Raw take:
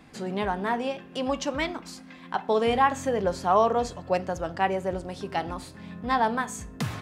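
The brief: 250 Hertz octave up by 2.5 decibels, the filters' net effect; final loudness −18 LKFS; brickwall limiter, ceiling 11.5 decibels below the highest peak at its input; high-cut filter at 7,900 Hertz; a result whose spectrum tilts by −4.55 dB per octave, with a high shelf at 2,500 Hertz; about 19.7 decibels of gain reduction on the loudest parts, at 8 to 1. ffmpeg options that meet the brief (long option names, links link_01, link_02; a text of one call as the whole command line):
ffmpeg -i in.wav -af "lowpass=7900,equalizer=frequency=250:width_type=o:gain=3,highshelf=frequency=2500:gain=5,acompressor=threshold=-36dB:ratio=8,volume=23.5dB,alimiter=limit=-7dB:level=0:latency=1" out.wav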